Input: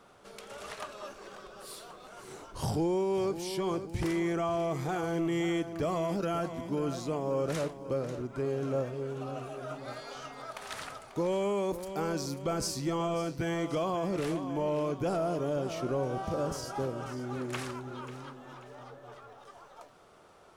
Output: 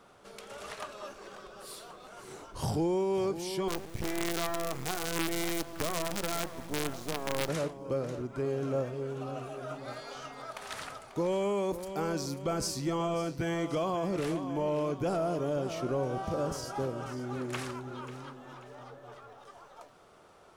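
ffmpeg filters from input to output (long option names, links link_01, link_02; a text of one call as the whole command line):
ffmpeg -i in.wav -filter_complex "[0:a]asettb=1/sr,asplit=3[link_01][link_02][link_03];[link_01]atrim=end=3.684[link_04];[link_02]atrim=start=3.68:end=7.49,asetpts=PTS-STARTPTS,afade=type=in:duration=0.004:curve=qsin,afade=type=out:start_time=3.806:duration=0.004:curve=qsin,acrusher=bits=5:dc=4:mix=0:aa=0.000001[link_05];[link_03]atrim=start=7.486[link_06];[link_04][link_05]acrossfade=duration=0.004:curve1=hsin:curve2=qsin[link_07];[link_07][link_06]acrossfade=duration=0.004:curve1=qsin:curve2=hsin" out.wav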